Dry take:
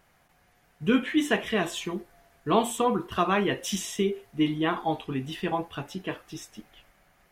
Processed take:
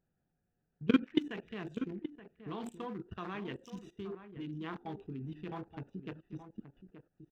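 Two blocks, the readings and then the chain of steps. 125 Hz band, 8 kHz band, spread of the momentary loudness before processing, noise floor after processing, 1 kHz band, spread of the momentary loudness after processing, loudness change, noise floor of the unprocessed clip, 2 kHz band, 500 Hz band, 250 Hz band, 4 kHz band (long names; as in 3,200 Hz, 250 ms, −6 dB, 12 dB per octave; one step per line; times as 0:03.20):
−9.0 dB, below −25 dB, 12 LU, −83 dBFS, −18.0 dB, 18 LU, −11.5 dB, −64 dBFS, −15.0 dB, −14.5 dB, −8.5 dB, −15.5 dB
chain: adaptive Wiener filter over 41 samples
graphic EQ with 15 bands 160 Hz +3 dB, 630 Hz −7 dB, 10,000 Hz −10 dB
output level in coarse steps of 20 dB
low-shelf EQ 97 Hz −6 dB
slap from a distant wall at 150 metres, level −11 dB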